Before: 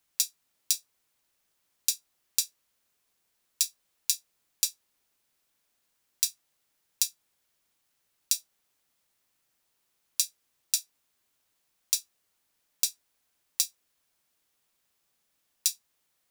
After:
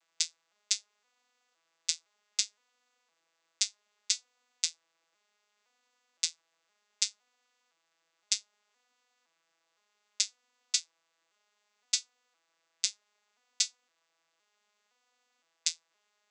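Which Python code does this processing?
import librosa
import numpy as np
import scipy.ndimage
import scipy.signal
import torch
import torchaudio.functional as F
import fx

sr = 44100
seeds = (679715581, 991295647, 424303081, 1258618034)

y = fx.vocoder_arp(x, sr, chord='major triad', root=52, every_ms=514)
y = scipy.signal.sosfilt(scipy.signal.butter(2, 710.0, 'highpass', fs=sr, output='sos'), y)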